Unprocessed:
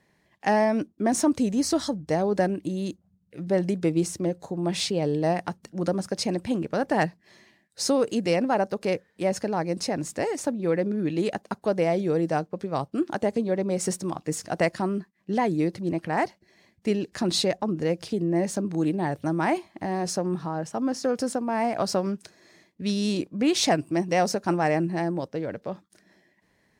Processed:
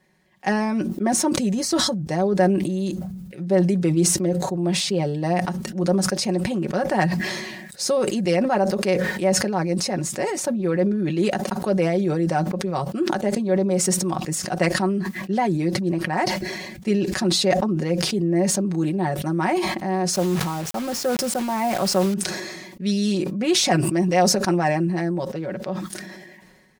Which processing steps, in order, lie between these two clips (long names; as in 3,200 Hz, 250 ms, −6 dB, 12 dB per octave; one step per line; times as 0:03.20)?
high-shelf EQ 11,000 Hz +3 dB
comb filter 5.4 ms, depth 73%
0:20.13–0:22.14: bit-depth reduction 6 bits, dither none
level that may fall only so fast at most 34 dB per second